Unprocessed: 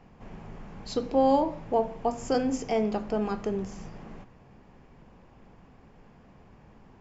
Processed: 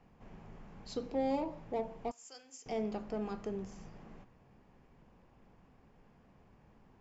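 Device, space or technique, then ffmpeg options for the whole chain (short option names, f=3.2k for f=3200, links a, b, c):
one-band saturation: -filter_complex "[0:a]asettb=1/sr,asplit=3[a][b][c];[a]atrim=end=2.114[d];[b]atrim=start=2.11:end=2.66,asetpts=PTS-STARTPTS,afade=t=in:d=0.004:c=qsin,afade=t=out:st=0.546:d=0.004:c=qsin,aderivative[e];[c]atrim=start=2.656[f];[d][e]acrossfade=d=0.004:c1=hsin:c2=qsin[g];[g][f]acrossfade=d=0.004:c1=qsin:c2=hsin,acrossover=split=590|3100[h][i][j];[i]asoftclip=type=tanh:threshold=-31dB[k];[h][k][j]amix=inputs=3:normalize=0,volume=-9dB"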